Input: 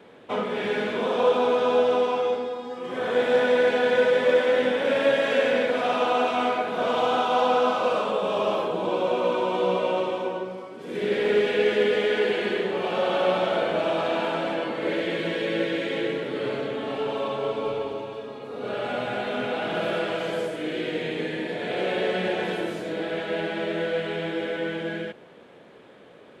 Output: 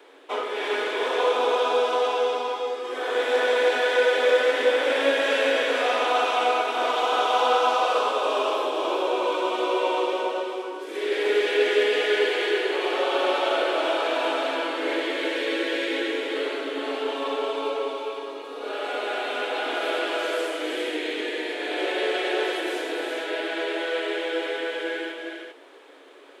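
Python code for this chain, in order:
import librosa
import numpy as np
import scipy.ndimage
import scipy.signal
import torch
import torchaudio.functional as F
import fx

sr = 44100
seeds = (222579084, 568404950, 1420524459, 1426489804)

y = scipy.signal.sosfilt(scipy.signal.cheby1(6, 3, 270.0, 'highpass', fs=sr, output='sos'), x)
y = fx.high_shelf(y, sr, hz=3100.0, db=10.0)
y = fx.echo_multitap(y, sr, ms=(316, 401), db=(-6.5, -6.0))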